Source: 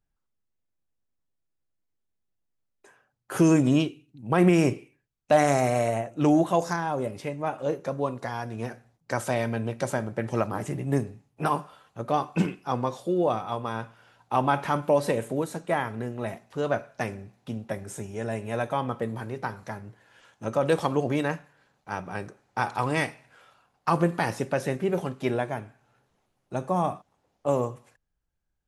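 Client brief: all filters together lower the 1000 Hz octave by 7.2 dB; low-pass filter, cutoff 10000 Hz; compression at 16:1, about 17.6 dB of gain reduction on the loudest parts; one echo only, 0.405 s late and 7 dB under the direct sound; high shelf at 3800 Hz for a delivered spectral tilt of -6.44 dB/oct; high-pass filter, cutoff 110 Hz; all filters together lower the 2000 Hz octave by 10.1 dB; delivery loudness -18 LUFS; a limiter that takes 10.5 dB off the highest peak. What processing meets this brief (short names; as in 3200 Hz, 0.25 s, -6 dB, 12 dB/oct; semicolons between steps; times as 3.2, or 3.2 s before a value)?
HPF 110 Hz; LPF 10000 Hz; bell 1000 Hz -8 dB; bell 2000 Hz -9 dB; high shelf 3800 Hz -5.5 dB; compressor 16:1, threshold -34 dBFS; limiter -30.5 dBFS; echo 0.405 s -7 dB; gain +24 dB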